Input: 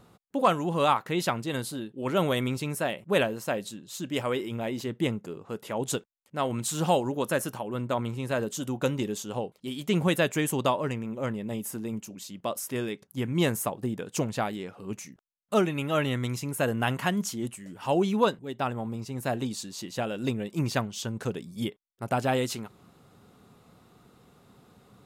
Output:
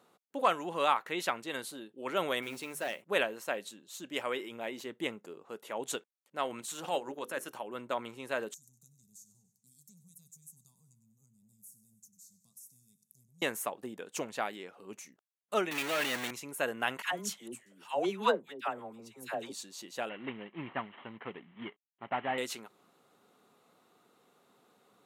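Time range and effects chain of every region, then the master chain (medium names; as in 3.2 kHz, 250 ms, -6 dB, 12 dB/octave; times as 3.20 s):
2.42–3.02 s: hum notches 50/100/150/200/250 Hz + hard clipper -25 dBFS + modulation noise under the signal 23 dB
6.61–7.51 s: hum notches 50/100/150/200/250/300/350/400/450/500 Hz + transient shaper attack -10 dB, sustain -6 dB
8.54–13.42 s: inverse Chebyshev band-stop 300–3200 Hz + compression 2.5:1, threshold -47 dBFS + feedback delay 97 ms, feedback 55%, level -15 dB
15.71–16.31 s: high-pass 270 Hz 6 dB/octave + companded quantiser 2-bit
17.02–19.52 s: hum notches 50/100/150 Hz + phase dispersion lows, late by 85 ms, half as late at 840 Hz + three bands expanded up and down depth 40%
20.09–22.38 s: CVSD coder 16 kbps + comb 1 ms, depth 42%
whole clip: high-pass 340 Hz 12 dB/octave; band-stop 5 kHz, Q 15; dynamic bell 2 kHz, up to +5 dB, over -44 dBFS, Q 0.92; trim -6 dB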